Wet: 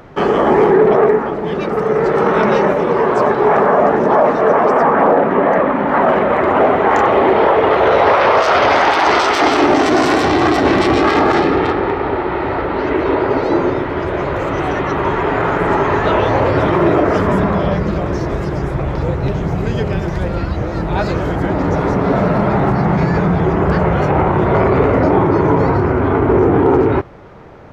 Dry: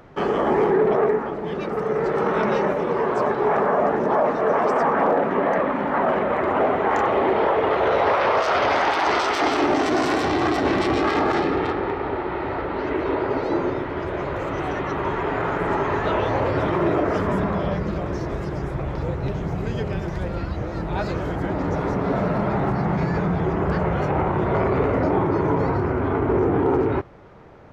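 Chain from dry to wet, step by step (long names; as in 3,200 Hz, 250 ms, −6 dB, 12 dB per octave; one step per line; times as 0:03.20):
0:04.52–0:05.89: high-shelf EQ 4,300 Hz −9.5 dB
level +8 dB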